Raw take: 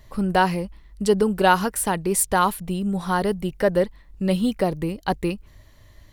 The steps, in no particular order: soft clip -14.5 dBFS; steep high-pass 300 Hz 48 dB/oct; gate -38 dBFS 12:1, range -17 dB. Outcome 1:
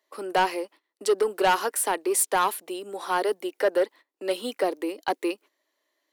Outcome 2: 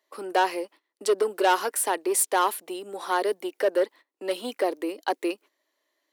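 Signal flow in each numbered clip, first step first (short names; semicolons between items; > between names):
gate > steep high-pass > soft clip; gate > soft clip > steep high-pass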